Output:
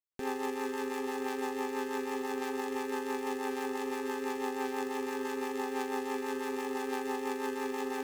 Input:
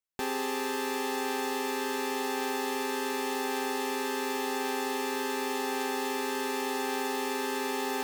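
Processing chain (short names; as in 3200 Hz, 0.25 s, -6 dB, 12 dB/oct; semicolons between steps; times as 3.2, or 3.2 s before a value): median filter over 15 samples; rotary speaker horn 6 Hz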